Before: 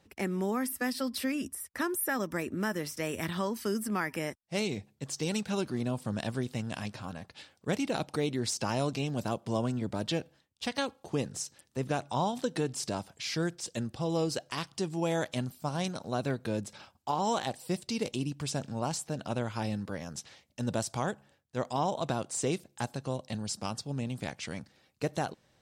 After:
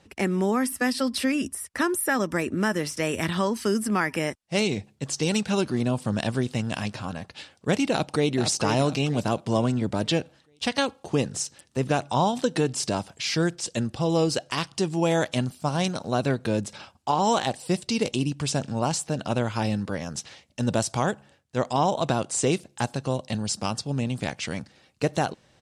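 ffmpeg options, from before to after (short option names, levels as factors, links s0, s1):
-filter_complex "[0:a]asplit=2[s0][s1];[s1]afade=t=in:st=7.91:d=0.01,afade=t=out:st=8.36:d=0.01,aecho=0:1:460|920|1380|1840|2300:0.421697|0.168679|0.0674714|0.0269886|0.0107954[s2];[s0][s2]amix=inputs=2:normalize=0,lowpass=f=11000:w=0.5412,lowpass=f=11000:w=1.3066,equalizer=f=2800:w=7.4:g=2.5,volume=2.37"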